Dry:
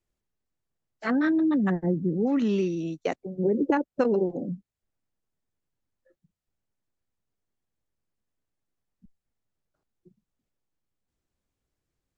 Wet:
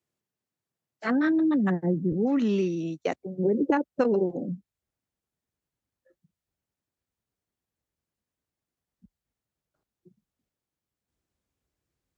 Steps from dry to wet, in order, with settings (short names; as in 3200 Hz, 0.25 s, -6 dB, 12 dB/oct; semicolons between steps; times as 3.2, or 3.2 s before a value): HPF 100 Hz 24 dB/oct, from 2.12 s 41 Hz